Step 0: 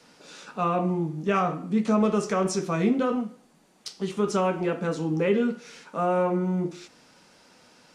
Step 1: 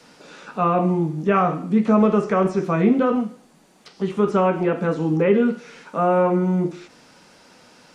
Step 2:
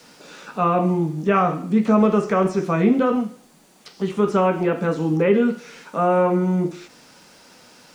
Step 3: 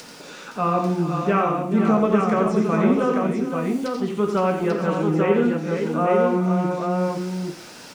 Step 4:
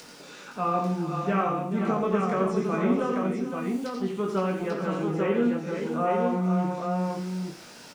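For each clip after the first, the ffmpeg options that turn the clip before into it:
-filter_complex "[0:a]acrossover=split=2600[a][b];[b]acompressor=threshold=-57dB:ratio=4:attack=1:release=60[c];[a][c]amix=inputs=2:normalize=0,volume=6dB"
-af "highshelf=f=4k:g=5.5,acrusher=bits=9:mix=0:aa=0.000001"
-af "acompressor=mode=upward:threshold=-30dB:ratio=2.5,aecho=1:1:87|433|515|841:0.447|0.211|0.447|0.596,volume=-3dB"
-filter_complex "[0:a]asplit=2[a][b];[b]adelay=21,volume=-5dB[c];[a][c]amix=inputs=2:normalize=0,volume=-6.5dB"

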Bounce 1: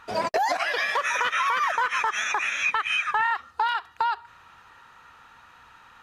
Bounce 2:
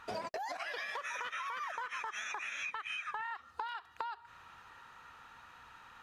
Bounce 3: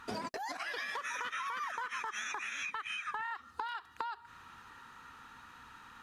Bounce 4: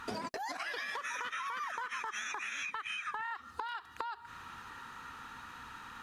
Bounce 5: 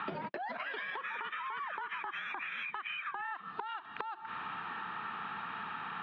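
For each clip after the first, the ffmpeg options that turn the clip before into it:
-af "acompressor=threshold=-33dB:ratio=12,volume=-4dB"
-af "equalizer=f=250:t=o:w=0.67:g=7,equalizer=f=630:t=o:w=0.67:g=-8,equalizer=f=2.5k:t=o:w=0.67:g=-3,equalizer=f=10k:t=o:w=0.67:g=3,volume=3dB"
-af "acompressor=threshold=-44dB:ratio=2.5,volume=5.5dB"
-af "highpass=f=190:t=q:w=0.5412,highpass=f=190:t=q:w=1.307,lowpass=f=3.4k:t=q:w=0.5176,lowpass=f=3.4k:t=q:w=0.7071,lowpass=f=3.4k:t=q:w=1.932,afreqshift=-51,acompressor=threshold=-46dB:ratio=10,volume=9.5dB"

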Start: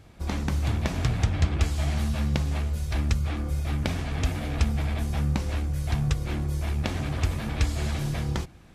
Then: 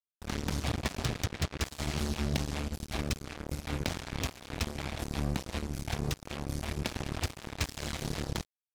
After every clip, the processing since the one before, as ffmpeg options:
-filter_complex "[0:a]adynamicequalizer=threshold=0.00355:dfrequency=5000:dqfactor=0.87:tfrequency=5000:tqfactor=0.87:attack=5:release=100:ratio=0.375:range=2.5:mode=boostabove:tftype=bell,acrossover=split=120|930|2800[a][b][c][d];[a]alimiter=limit=-24dB:level=0:latency=1:release=456[e];[e][b][c][d]amix=inputs=4:normalize=0,acrusher=bits=3:mix=0:aa=0.5,volume=-5.5dB"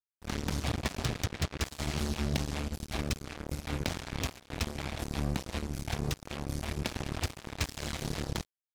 -af "agate=range=-12dB:threshold=-44dB:ratio=16:detection=peak"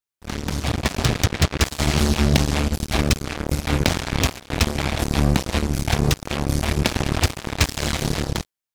-af "dynaudnorm=f=190:g=9:m=8dB,volume=6dB"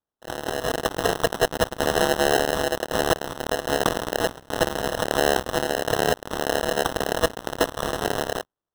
-af "asuperstop=centerf=2500:order=8:qfactor=2.1,aeval=exprs='val(0)*sin(2*PI*570*n/s)':c=same,acrusher=samples=19:mix=1:aa=0.000001"

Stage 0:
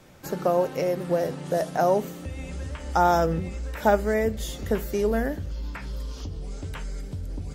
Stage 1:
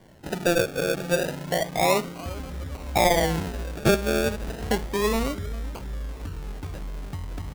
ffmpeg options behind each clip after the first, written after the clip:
-af "aecho=1:1:401:0.133,acrusher=samples=34:mix=1:aa=0.000001:lfo=1:lforange=20.4:lforate=0.31"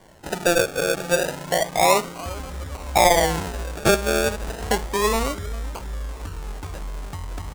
-af "equalizer=f=125:t=o:w=1:g=-5,equalizer=f=250:t=o:w=1:g=-4,equalizer=f=1k:t=o:w=1:g=4,equalizer=f=8k:t=o:w=1:g=5,volume=3dB"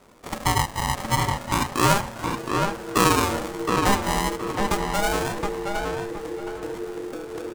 -filter_complex "[0:a]aeval=exprs='val(0)*sin(2*PI*400*n/s)':c=same,asplit=2[a][b];[b]adelay=719,lowpass=f=3.2k:p=1,volume=-3.5dB,asplit=2[c][d];[d]adelay=719,lowpass=f=3.2k:p=1,volume=0.3,asplit=2[e][f];[f]adelay=719,lowpass=f=3.2k:p=1,volume=0.3,asplit=2[g][h];[h]adelay=719,lowpass=f=3.2k:p=1,volume=0.3[i];[a][c][e][g][i]amix=inputs=5:normalize=0"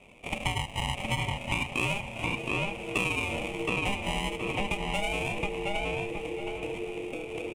-af "firequalizer=gain_entry='entry(150,0);entry(330,-5);entry(680,0);entry(1600,-19);entry(2400,14);entry(4300,-13);entry(6400,-8);entry(9500,-3);entry(14000,-18)':delay=0.05:min_phase=1,acompressor=threshold=-26dB:ratio=6"

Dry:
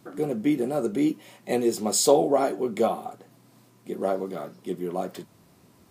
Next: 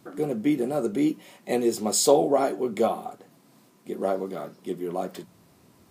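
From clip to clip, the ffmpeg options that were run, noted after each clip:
-af "bandreject=f=60:t=h:w=6,bandreject=f=120:t=h:w=6,bandreject=f=180:t=h:w=6"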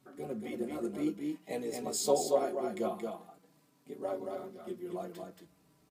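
-filter_complex "[0:a]asplit=2[a][b];[b]aecho=0:1:227:0.596[c];[a][c]amix=inputs=2:normalize=0,tremolo=f=61:d=0.4,asplit=2[d][e];[e]adelay=4.9,afreqshift=-0.48[f];[d][f]amix=inputs=2:normalize=1,volume=-6.5dB"

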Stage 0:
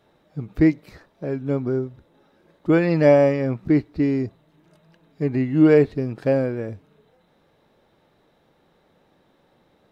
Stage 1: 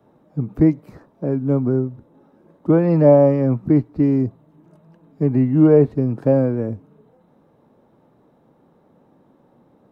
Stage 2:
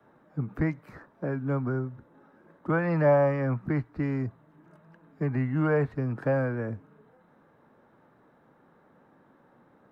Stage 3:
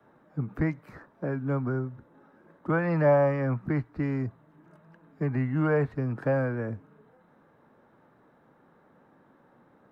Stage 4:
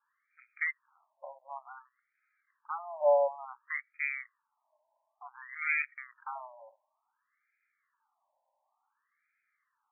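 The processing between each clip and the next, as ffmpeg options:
-filter_complex "[0:a]equalizer=f=125:t=o:w=1:g=8,equalizer=f=250:t=o:w=1:g=11,equalizer=f=500:t=o:w=1:g=4,equalizer=f=1k:t=o:w=1:g=7,equalizer=f=2k:t=o:w=1:g=-4,equalizer=f=4k:t=o:w=1:g=-8,acrossover=split=200|390|1200[a][b][c][d];[b]acompressor=threshold=-23dB:ratio=6[e];[d]alimiter=level_in=6.5dB:limit=-24dB:level=0:latency=1,volume=-6.5dB[f];[a][e][c][f]amix=inputs=4:normalize=0,volume=-3dB"
-filter_complex "[0:a]equalizer=f=1.6k:t=o:w=1.2:g=13.5,acrossover=split=170|590[a][b][c];[b]acompressor=threshold=-27dB:ratio=6[d];[a][d][c]amix=inputs=3:normalize=0,volume=-6.5dB"
-af anull
-af "aeval=exprs='0.266*(cos(1*acos(clip(val(0)/0.266,-1,1)))-cos(1*PI/2))+0.0668*(cos(4*acos(clip(val(0)/0.266,-1,1)))-cos(4*PI/2))+0.0596*(cos(6*acos(clip(val(0)/0.266,-1,1)))-cos(6*PI/2))+0.0266*(cos(7*acos(clip(val(0)/0.266,-1,1)))-cos(7*PI/2))':c=same,aexciter=amount=11.8:drive=9:freq=2.4k,afftfilt=real='re*between(b*sr/1024,740*pow(1800/740,0.5+0.5*sin(2*PI*0.56*pts/sr))/1.41,740*pow(1800/740,0.5+0.5*sin(2*PI*0.56*pts/sr))*1.41)':imag='im*between(b*sr/1024,740*pow(1800/740,0.5+0.5*sin(2*PI*0.56*pts/sr))/1.41,740*pow(1800/740,0.5+0.5*sin(2*PI*0.56*pts/sr))*1.41)':win_size=1024:overlap=0.75,volume=-2.5dB"

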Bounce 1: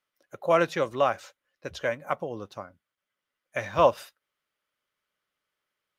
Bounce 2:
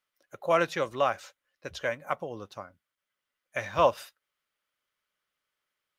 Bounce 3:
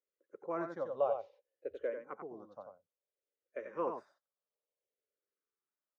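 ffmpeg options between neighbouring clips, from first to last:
-af "equalizer=f=250:w=0.32:g=-4"
-filter_complex "[0:a]bandpass=f=450:t=q:w=3.4:csg=0,aecho=1:1:90:0.501,asplit=2[a][b];[b]afreqshift=-0.59[c];[a][c]amix=inputs=2:normalize=1,volume=3.5dB"

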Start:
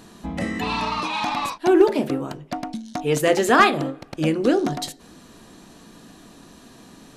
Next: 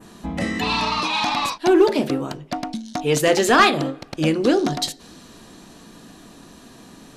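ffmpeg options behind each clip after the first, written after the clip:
-af "adynamicequalizer=threshold=0.00631:dfrequency=4500:dqfactor=0.91:tfrequency=4500:tqfactor=0.91:attack=5:release=100:ratio=0.375:range=3:mode=boostabove:tftype=bell,acontrast=48,volume=-4dB"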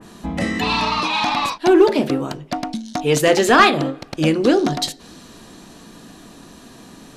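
-af "adynamicequalizer=threshold=0.0178:dfrequency=4200:dqfactor=0.7:tfrequency=4200:tqfactor=0.7:attack=5:release=100:ratio=0.375:range=2.5:mode=cutabove:tftype=highshelf,volume=2.5dB"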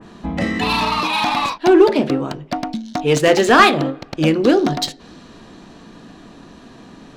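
-af "adynamicsmooth=sensitivity=2:basefreq=4.6k,volume=1.5dB"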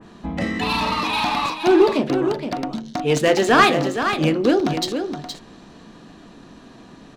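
-af "aecho=1:1:469:0.398,volume=-3.5dB"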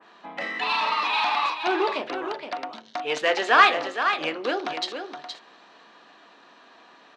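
-af "highpass=760,lowpass=3.8k"

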